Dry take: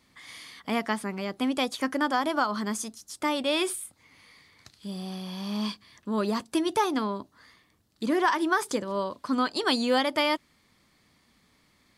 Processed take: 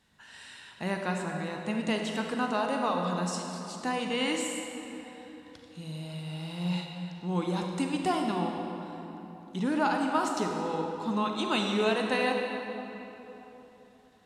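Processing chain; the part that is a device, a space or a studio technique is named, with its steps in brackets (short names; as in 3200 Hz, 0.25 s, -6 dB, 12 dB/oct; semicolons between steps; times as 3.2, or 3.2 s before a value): slowed and reverbed (varispeed -16%; reverb RT60 3.5 s, pre-delay 33 ms, DRR 1.5 dB); gain -4.5 dB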